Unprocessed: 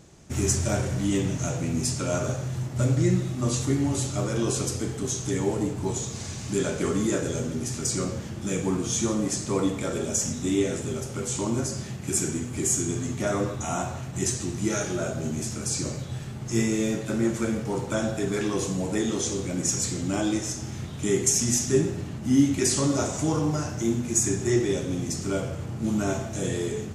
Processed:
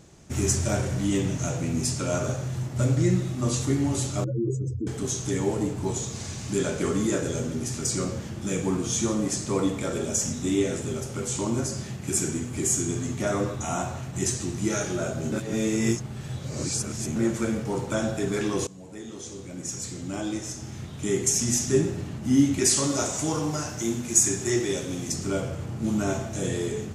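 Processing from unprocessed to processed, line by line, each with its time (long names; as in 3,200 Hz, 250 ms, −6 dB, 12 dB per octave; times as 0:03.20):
0:04.24–0:04.87: expanding power law on the bin magnitudes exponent 3.3
0:15.32–0:17.16: reverse
0:18.67–0:21.75: fade in, from −19 dB
0:22.66–0:25.12: spectral tilt +1.5 dB per octave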